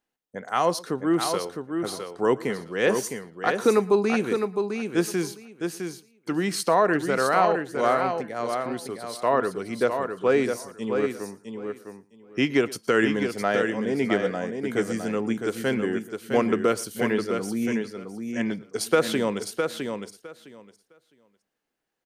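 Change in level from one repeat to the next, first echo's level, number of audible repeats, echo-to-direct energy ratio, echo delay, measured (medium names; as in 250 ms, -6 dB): no regular repeats, -21.0 dB, 4, -5.5 dB, 115 ms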